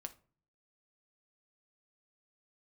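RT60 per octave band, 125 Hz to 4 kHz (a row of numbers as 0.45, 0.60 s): 0.75, 0.65, 0.45, 0.40, 0.30, 0.25 s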